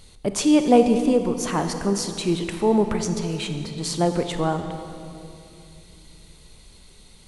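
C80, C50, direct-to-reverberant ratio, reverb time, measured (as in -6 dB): 8.5 dB, 8.0 dB, 7.0 dB, 2.8 s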